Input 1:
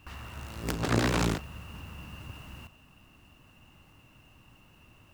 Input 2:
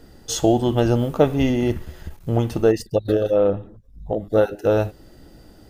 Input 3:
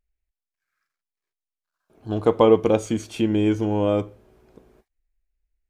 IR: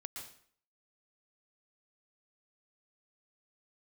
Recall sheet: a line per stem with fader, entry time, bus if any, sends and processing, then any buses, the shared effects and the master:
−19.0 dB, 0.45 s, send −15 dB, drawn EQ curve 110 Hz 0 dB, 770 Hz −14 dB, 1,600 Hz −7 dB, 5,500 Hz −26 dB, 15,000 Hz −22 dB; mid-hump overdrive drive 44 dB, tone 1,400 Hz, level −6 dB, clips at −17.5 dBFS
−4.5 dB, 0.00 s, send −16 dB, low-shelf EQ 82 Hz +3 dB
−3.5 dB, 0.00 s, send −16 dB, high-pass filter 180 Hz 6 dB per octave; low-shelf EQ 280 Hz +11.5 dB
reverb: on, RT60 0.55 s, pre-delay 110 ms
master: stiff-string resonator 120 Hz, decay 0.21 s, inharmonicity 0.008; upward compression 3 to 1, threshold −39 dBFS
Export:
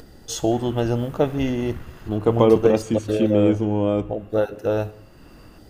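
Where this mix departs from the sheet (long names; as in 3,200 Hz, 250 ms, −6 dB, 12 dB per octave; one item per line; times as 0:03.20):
stem 2: missing low-shelf EQ 82 Hz +3 dB
master: missing stiff-string resonator 120 Hz, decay 0.21 s, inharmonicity 0.008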